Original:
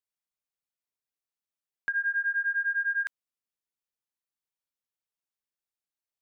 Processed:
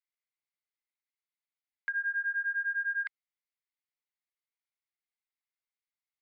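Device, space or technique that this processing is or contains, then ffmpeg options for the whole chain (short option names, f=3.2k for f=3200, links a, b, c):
musical greeting card: -af "aresample=11025,aresample=44100,highpass=f=780:w=0.5412,highpass=f=780:w=1.3066,equalizer=f=2.1k:t=o:w=0.24:g=12,volume=-5dB"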